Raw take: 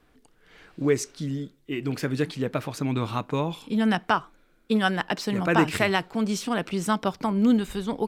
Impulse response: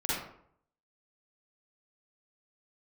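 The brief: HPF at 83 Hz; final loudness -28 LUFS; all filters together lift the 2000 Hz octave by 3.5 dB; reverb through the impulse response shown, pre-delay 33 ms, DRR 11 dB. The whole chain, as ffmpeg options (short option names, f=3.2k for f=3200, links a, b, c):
-filter_complex "[0:a]highpass=83,equalizer=f=2k:t=o:g=4.5,asplit=2[a][b];[1:a]atrim=start_sample=2205,adelay=33[c];[b][c]afir=irnorm=-1:irlink=0,volume=-18.5dB[d];[a][d]amix=inputs=2:normalize=0,volume=-3dB"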